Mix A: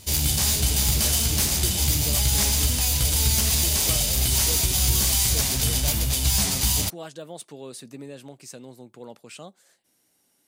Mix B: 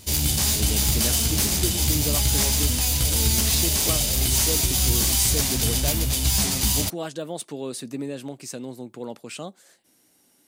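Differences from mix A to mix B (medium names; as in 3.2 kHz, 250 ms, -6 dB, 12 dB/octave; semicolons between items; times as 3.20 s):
speech +5.5 dB; master: add peaking EQ 280 Hz +4 dB 0.9 oct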